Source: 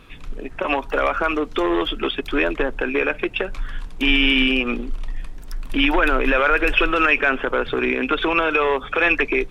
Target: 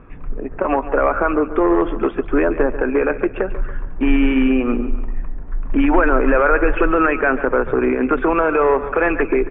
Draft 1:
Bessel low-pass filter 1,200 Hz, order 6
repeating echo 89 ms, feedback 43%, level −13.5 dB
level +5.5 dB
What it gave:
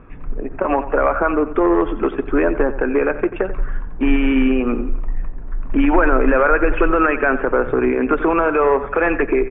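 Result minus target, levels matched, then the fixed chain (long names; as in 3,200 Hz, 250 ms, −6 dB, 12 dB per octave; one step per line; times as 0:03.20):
echo 52 ms early
Bessel low-pass filter 1,200 Hz, order 6
repeating echo 141 ms, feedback 43%, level −13.5 dB
level +5.5 dB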